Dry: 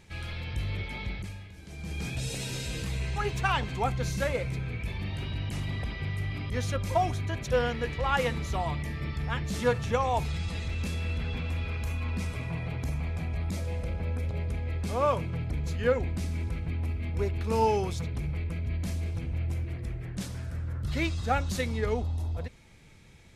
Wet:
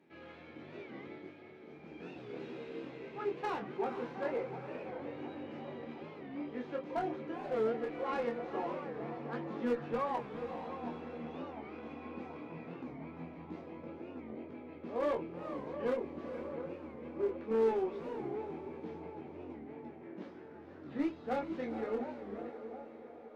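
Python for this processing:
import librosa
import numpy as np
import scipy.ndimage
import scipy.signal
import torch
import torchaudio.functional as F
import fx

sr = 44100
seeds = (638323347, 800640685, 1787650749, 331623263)

p1 = fx.tracing_dist(x, sr, depth_ms=0.24)
p2 = fx.spacing_loss(p1, sr, db_at_10k=44)
p3 = fx.doubler(p2, sr, ms=13.0, db=-4)
p4 = fx.vibrato(p3, sr, rate_hz=2.9, depth_cents=14.0)
p5 = 10.0 ** (-25.5 / 20.0) * np.tanh(p4 / 10.0 ** (-25.5 / 20.0))
p6 = p4 + (p5 * 10.0 ** (-4.0 / 20.0))
p7 = fx.ladder_highpass(p6, sr, hz=250.0, resonance_pct=45)
p8 = fx.clip_asym(p7, sr, top_db=-29.0, bottom_db=-24.5)
p9 = fx.echo_diffused(p8, sr, ms=472, feedback_pct=45, wet_db=-9)
p10 = fx.chorus_voices(p9, sr, voices=2, hz=0.21, base_ms=24, depth_ms=3.0, mix_pct=40)
p11 = fx.echo_banded(p10, sr, ms=714, feedback_pct=65, hz=710.0, wet_db=-10)
p12 = fx.record_warp(p11, sr, rpm=45.0, depth_cents=160.0)
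y = p12 * 10.0 ** (2.5 / 20.0)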